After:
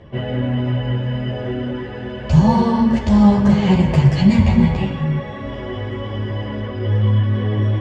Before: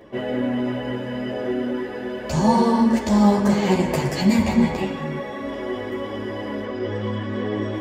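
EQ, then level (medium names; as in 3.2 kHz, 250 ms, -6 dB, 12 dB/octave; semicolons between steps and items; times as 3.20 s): distance through air 100 m; resonant low shelf 190 Hz +12 dB, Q 1.5; peaking EQ 3 kHz +5.5 dB 0.3 oct; +1.0 dB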